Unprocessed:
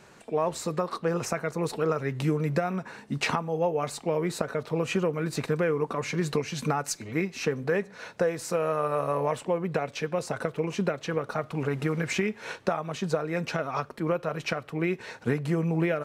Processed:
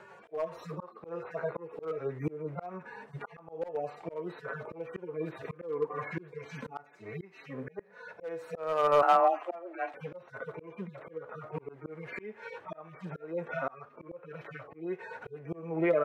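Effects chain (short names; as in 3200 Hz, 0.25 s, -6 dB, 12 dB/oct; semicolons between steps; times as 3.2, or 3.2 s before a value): median-filter separation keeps harmonic; three-band isolator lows -16 dB, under 370 Hz, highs -19 dB, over 2200 Hz; hard clip -23.5 dBFS, distortion -23 dB; de-hum 245.9 Hz, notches 7; auto swell 0.454 s; 9.02–9.94 frequency shift +170 Hz; gain +8 dB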